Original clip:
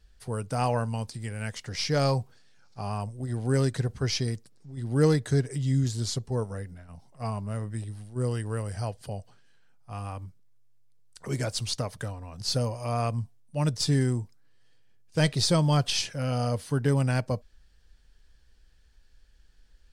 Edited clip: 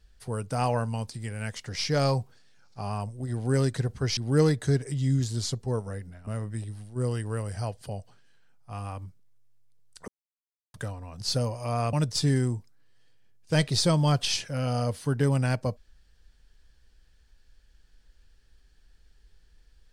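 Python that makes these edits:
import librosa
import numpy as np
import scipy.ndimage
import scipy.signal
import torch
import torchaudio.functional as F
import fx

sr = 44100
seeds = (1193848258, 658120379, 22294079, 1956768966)

y = fx.edit(x, sr, fx.cut(start_s=4.17, length_s=0.64),
    fx.cut(start_s=6.91, length_s=0.56),
    fx.silence(start_s=11.28, length_s=0.66),
    fx.cut(start_s=13.13, length_s=0.45), tone=tone)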